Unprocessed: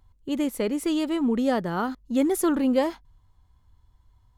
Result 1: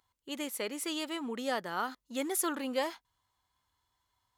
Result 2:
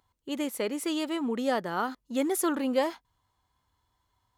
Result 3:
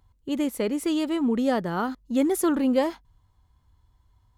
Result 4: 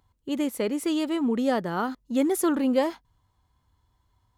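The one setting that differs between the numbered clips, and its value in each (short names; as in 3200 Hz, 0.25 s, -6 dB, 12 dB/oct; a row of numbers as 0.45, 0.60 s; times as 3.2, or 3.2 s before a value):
HPF, cutoff: 1500, 540, 41, 160 Hz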